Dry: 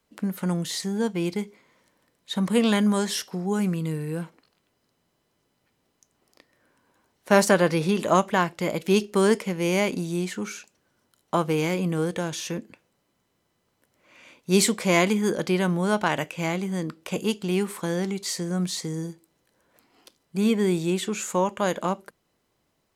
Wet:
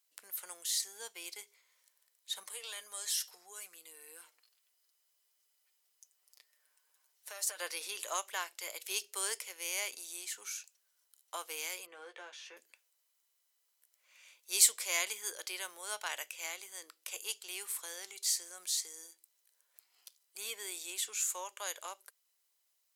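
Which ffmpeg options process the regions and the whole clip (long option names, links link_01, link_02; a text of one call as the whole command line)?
ffmpeg -i in.wav -filter_complex "[0:a]asettb=1/sr,asplit=3[link_01][link_02][link_03];[link_01]atrim=end=2.434[link_04];[link_02]atrim=start=2.43:end=7.6,asetpts=PTS-STARTPTS,afade=type=in:duration=0.004:curve=qsin,afade=type=out:start_time=5.166:duration=0.004:curve=qsin,aecho=1:1:6.6:0.57,atrim=end_sample=227997,acompressor=threshold=-27dB:ratio=5:attack=3.2:release=140:knee=1:detection=peak[link_05];[link_03]atrim=start=7.596[link_06];[link_04][link_05]acrossfade=duration=0.004:curve1=hsin:curve2=qsin[link_07];[link_07][link_06]acrossfade=duration=0.004:curve1=qsin:curve2=hsin,asettb=1/sr,asplit=3[link_08][link_09][link_10];[link_08]atrim=end=11.864[link_11];[link_09]atrim=start=11.86:end=12.57,asetpts=PTS-STARTPTS,afade=type=in:duration=0.004:curve=qsin,afade=type=out:start_time=0.706:duration=0.004:curve=qsin,lowpass=2100,asplit=2[link_12][link_13];[link_13]adelay=14,volume=-5dB[link_14];[link_12][link_14]amix=inputs=2:normalize=0,atrim=end_sample=31311[link_15];[link_10]atrim=start=12.566[link_16];[link_11][link_15]acrossfade=duration=0.004:curve1=hsin:curve2=qsin[link_17];[link_17][link_16]acrossfade=duration=0.004:curve1=qsin:curve2=hsin,highpass=frequency=400:width=0.5412,highpass=frequency=400:width=1.3066,aderivative" out.wav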